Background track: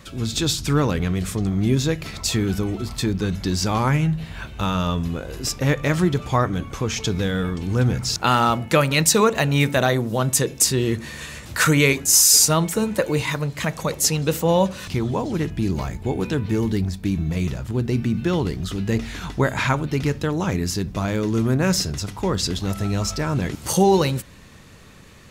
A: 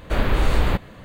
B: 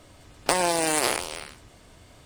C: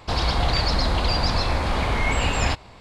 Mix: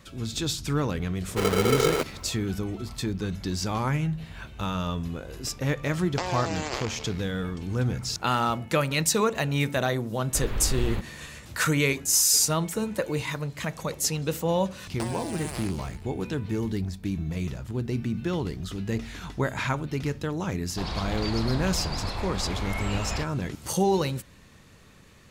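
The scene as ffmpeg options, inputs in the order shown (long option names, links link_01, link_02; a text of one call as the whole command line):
ffmpeg -i bed.wav -i cue0.wav -i cue1.wav -i cue2.wav -filter_complex "[1:a]asplit=2[link_01][link_02];[2:a]asplit=2[link_03][link_04];[0:a]volume=-7dB[link_05];[link_01]aeval=exprs='val(0)*sgn(sin(2*PI*440*n/s))':channel_layout=same[link_06];[link_03]aresample=16000,aresample=44100[link_07];[link_02]acrossover=split=190|3000[link_08][link_09][link_10];[link_09]acompressor=threshold=-27dB:ratio=6:attack=3.2:release=140:knee=2.83:detection=peak[link_11];[link_08][link_11][link_10]amix=inputs=3:normalize=0[link_12];[link_06]atrim=end=1.04,asetpts=PTS-STARTPTS,volume=-7dB,afade=type=in:duration=0.004:curve=hsin,afade=type=out:start_time=1.036:duration=0.004:curve=hsin,adelay=1260[link_13];[link_07]atrim=end=2.25,asetpts=PTS-STARTPTS,volume=-7.5dB,afade=type=in:duration=0.004:curve=hsin,afade=type=out:start_time=2.246:duration=0.004:curve=hsin,adelay=250929S[link_14];[link_12]atrim=end=1.04,asetpts=PTS-STARTPTS,volume=-9dB,afade=type=in:duration=0.004:curve=hsin,afade=type=out:start_time=1.036:duration=0.004:curve=hsin,adelay=10240[link_15];[link_04]atrim=end=2.25,asetpts=PTS-STARTPTS,volume=-14dB,afade=type=in:duration=0.004:curve=hsin,afade=type=out:start_time=2.246:duration=0.004:curve=hsin,adelay=14510[link_16];[3:a]atrim=end=2.8,asetpts=PTS-STARTPTS,volume=-10dB,afade=type=in:duration=0.004:curve=hsin,afade=type=out:start_time=2.796:duration=0.004:curve=hsin,adelay=20690[link_17];[link_05][link_13][link_14][link_15][link_16][link_17]amix=inputs=6:normalize=0" out.wav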